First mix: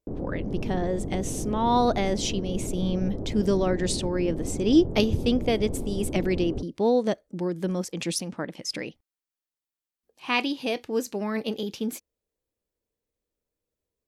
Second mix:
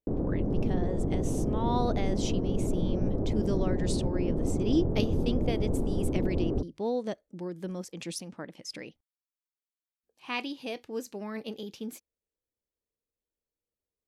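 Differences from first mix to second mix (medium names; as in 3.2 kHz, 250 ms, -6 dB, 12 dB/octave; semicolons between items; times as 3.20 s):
speech -8.5 dB; background +3.0 dB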